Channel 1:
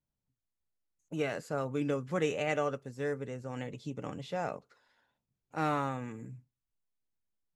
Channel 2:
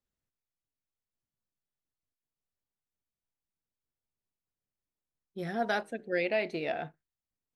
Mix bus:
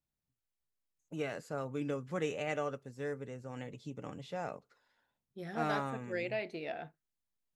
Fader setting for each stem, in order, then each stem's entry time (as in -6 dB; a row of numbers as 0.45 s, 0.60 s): -4.5 dB, -7.0 dB; 0.00 s, 0.00 s